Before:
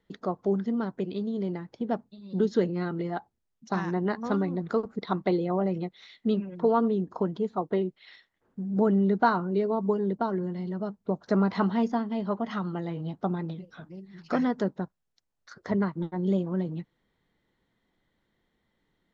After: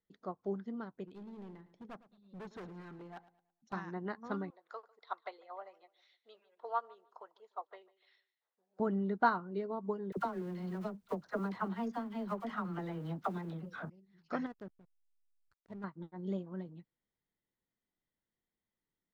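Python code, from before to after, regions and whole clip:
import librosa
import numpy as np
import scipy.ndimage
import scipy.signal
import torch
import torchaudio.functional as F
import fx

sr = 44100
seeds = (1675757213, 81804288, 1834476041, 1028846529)

y = fx.chain(x, sr, fx.notch(hz=4800.0, q=6.8),
    fx.clip_hard(threshold_db=-30.0),
    fx.echo_feedback(ms=109, feedback_pct=36, wet_db=-13), at=(1.05, 3.73))
y = fx.chain(y, sr, fx.highpass(hz=590.0, slope=24),
    fx.echo_feedback(ms=149, feedback_pct=34, wet_db=-18.0), at=(4.5, 8.8))
y = fx.chain(y, sr, fx.law_mismatch(coded='mu'),
    fx.dispersion(late='lows', ms=51.0, hz=660.0),
    fx.band_squash(depth_pct=100), at=(10.12, 13.9))
y = fx.chain(y, sr, fx.comb_fb(f0_hz=200.0, decay_s=0.16, harmonics='all', damping=0.0, mix_pct=30),
    fx.level_steps(step_db=10),
    fx.backlash(play_db=-38.5), at=(14.46, 15.84))
y = fx.dynamic_eq(y, sr, hz=1400.0, q=1.0, threshold_db=-43.0, ratio=4.0, max_db=5)
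y = fx.upward_expand(y, sr, threshold_db=-38.0, expansion=1.5)
y = F.gain(torch.from_numpy(y), -8.0).numpy()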